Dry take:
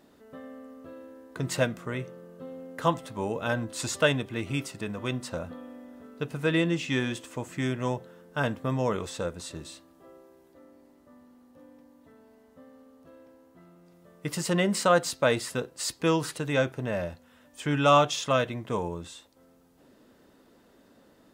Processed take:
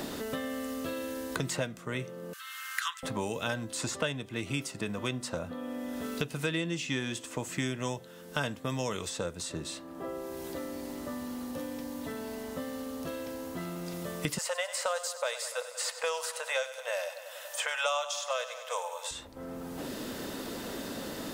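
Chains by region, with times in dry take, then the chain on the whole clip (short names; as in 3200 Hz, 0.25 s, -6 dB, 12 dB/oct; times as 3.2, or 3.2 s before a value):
2.33–3.03 steep high-pass 1300 Hz 48 dB/oct + upward compressor, threshold -52 dBFS
14.38–19.11 brick-wall FIR high-pass 470 Hz + high shelf 5100 Hz +7 dB + feedback echo 97 ms, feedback 59%, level -14 dB
whole clip: dynamic EQ 7000 Hz, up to +4 dB, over -48 dBFS, Q 0.78; three-band squash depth 100%; gain -4 dB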